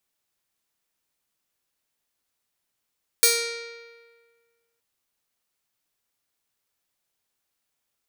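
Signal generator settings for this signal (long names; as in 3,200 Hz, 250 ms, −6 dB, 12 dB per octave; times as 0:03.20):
Karplus-Strong string A#4, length 1.57 s, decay 1.66 s, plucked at 0.48, bright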